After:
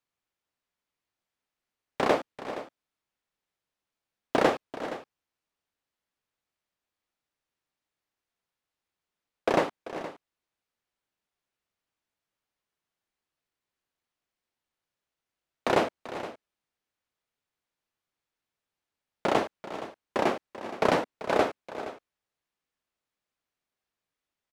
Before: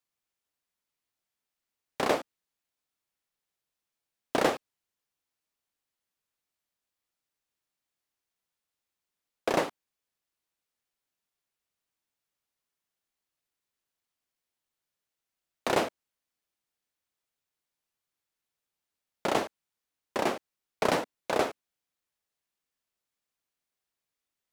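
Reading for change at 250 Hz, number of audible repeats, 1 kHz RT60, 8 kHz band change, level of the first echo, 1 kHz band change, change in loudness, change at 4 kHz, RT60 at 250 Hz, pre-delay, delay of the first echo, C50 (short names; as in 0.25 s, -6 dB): +3.5 dB, 2, none, -4.0 dB, -14.5 dB, +3.0 dB, +1.0 dB, -0.5 dB, none, none, 0.389 s, none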